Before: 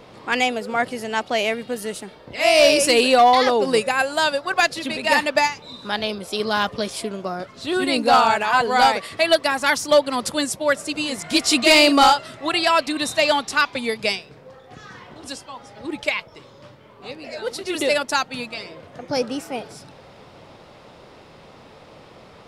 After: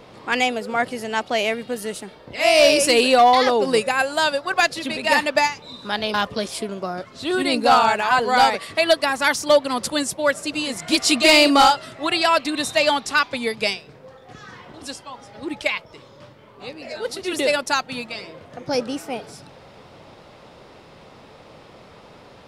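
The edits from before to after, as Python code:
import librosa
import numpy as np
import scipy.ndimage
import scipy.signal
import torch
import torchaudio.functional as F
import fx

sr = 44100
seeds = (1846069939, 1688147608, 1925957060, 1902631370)

y = fx.edit(x, sr, fx.cut(start_s=6.14, length_s=0.42), tone=tone)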